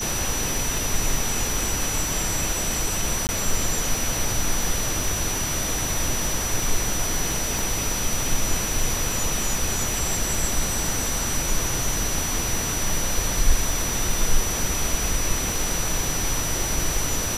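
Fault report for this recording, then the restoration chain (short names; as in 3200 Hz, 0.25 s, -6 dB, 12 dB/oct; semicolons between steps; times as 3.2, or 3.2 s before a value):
crackle 34/s -30 dBFS
tone 5900 Hz -28 dBFS
3.27–3.29 gap 19 ms
7.59 pop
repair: de-click; notch 5900 Hz, Q 30; interpolate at 3.27, 19 ms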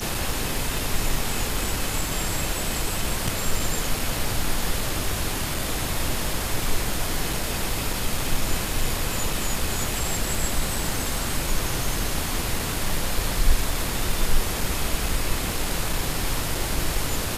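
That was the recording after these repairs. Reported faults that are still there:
none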